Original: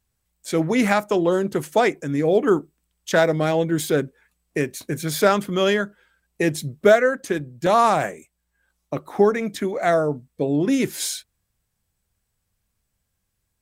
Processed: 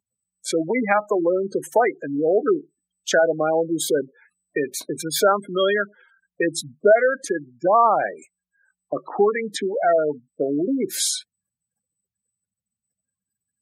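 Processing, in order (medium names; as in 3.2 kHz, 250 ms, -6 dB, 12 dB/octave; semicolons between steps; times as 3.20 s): spectral gate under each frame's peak -15 dB strong; Bessel high-pass 460 Hz, order 2; in parallel at +0.5 dB: compression, threshold -27 dBFS, peak gain reduction 14.5 dB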